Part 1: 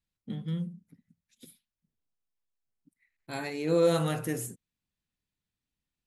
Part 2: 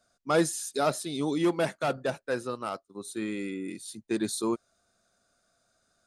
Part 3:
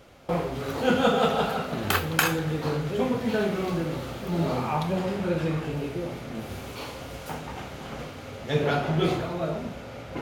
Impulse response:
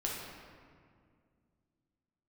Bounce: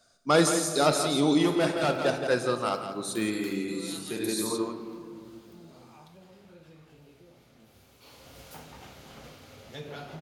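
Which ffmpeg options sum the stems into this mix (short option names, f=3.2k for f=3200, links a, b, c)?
-filter_complex "[0:a]aderivative,volume=-1dB,asplit=2[a][b];[1:a]volume=2dB,asplit=3[c][d][e];[d]volume=-7.5dB[f];[e]volume=-7.5dB[g];[2:a]highshelf=f=8.6k:g=11.5,acompressor=threshold=-30dB:ratio=2,adelay=1250,volume=-11.5dB,afade=t=in:st=7.99:d=0.42:silence=0.281838[h];[b]apad=whole_len=267562[i];[c][i]sidechaincompress=threshold=-58dB:ratio=8:attack=16:release=1320[j];[3:a]atrim=start_sample=2205[k];[f][k]afir=irnorm=-1:irlink=0[l];[g]aecho=0:1:170:1[m];[a][j][h][l][m]amix=inputs=5:normalize=0,equalizer=f=4.5k:w=1.1:g=5"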